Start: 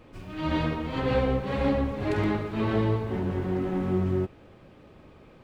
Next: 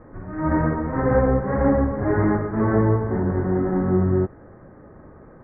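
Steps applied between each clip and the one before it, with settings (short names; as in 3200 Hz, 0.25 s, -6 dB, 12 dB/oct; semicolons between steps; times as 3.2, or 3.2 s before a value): steep low-pass 1900 Hz 72 dB/oct; gain +6.5 dB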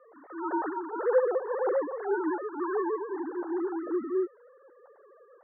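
sine-wave speech; three-band isolator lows -22 dB, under 350 Hz, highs -22 dB, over 2100 Hz; gain -6 dB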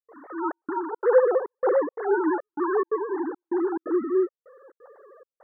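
step gate ".xxxxx..xxx" 175 bpm -60 dB; gain +6 dB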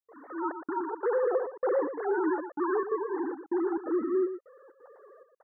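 limiter -17.5 dBFS, peak gain reduction 9.5 dB; on a send: echo 0.116 s -10 dB; on the sum: gain -3.5 dB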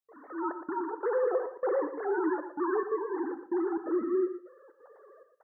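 non-linear reverb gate 0.26 s falling, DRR 11.5 dB; gain -1.5 dB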